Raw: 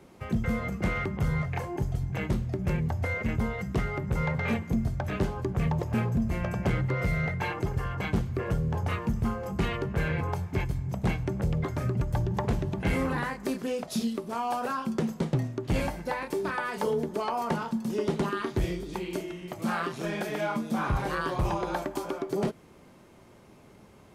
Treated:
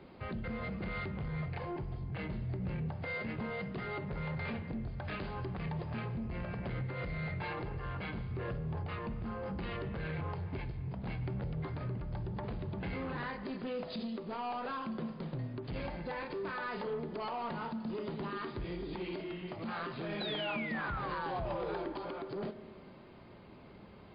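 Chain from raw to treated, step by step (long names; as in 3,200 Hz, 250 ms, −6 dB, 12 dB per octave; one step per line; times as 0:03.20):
0:02.91–0:04.13: Bessel high-pass filter 170 Hz, order 2
0:04.91–0:06.18: tilt shelving filter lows −3.5 dB
downward compressor 6 to 1, threshold −31 dBFS, peak gain reduction 9.5 dB
brickwall limiter −27 dBFS, peak gain reduction 6 dB
soft clipping −33 dBFS, distortion −15 dB
0:20.20–0:21.93: sound drawn into the spectrogram fall 310–4,100 Hz −41 dBFS
spring reverb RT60 1.6 s, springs 32/48 ms, chirp 50 ms, DRR 11.5 dB
MP3 32 kbit/s 11,025 Hz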